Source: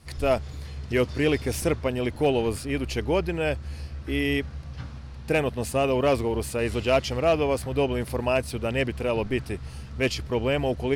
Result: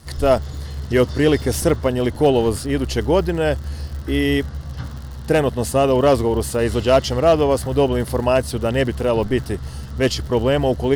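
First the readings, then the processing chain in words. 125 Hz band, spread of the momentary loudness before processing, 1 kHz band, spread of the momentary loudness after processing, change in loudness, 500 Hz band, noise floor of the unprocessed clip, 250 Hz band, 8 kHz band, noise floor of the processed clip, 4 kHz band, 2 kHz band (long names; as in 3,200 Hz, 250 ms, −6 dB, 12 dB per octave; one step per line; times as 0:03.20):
+7.5 dB, 13 LU, +7.5 dB, 13 LU, +7.0 dB, +7.5 dB, −40 dBFS, +7.5 dB, +7.5 dB, −32 dBFS, +6.0 dB, +3.0 dB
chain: surface crackle 86 per second −37 dBFS
parametric band 2,400 Hz −14 dB 0.24 octaves
level +7.5 dB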